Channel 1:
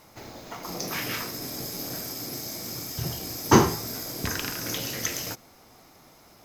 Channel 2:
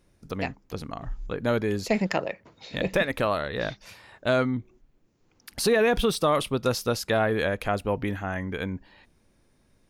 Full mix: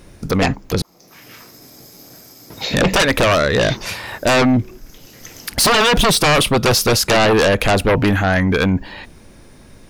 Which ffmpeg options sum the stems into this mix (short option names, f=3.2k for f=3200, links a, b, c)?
-filter_complex "[0:a]adelay=200,volume=-7.5dB[a];[1:a]aeval=exprs='0.355*sin(PI/2*5.01*val(0)/0.355)':c=same,volume=3dB,asplit=3[b][c][d];[b]atrim=end=0.82,asetpts=PTS-STARTPTS,afade=t=out:st=0.816:d=0.004:c=hsin[e];[c]atrim=start=0.82:end=2.5,asetpts=PTS-STARTPTS,volume=0[f];[d]atrim=start=2.5,asetpts=PTS-STARTPTS,afade=t=in:d=0.004:c=hsin[g];[e][f][g]concat=n=3:v=0:a=1,asplit=2[h][i];[i]apad=whole_len=293237[j];[a][j]sidechaincompress=threshold=-24dB:ratio=8:attack=16:release=671[k];[k][h]amix=inputs=2:normalize=0,alimiter=limit=-9.5dB:level=0:latency=1:release=37"